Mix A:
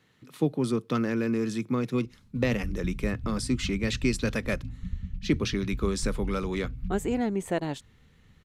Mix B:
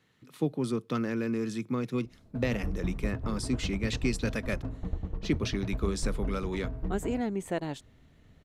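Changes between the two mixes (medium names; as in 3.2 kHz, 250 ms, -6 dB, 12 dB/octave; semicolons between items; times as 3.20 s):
speech -3.5 dB; background: remove brick-wall FIR band-stop 260–2100 Hz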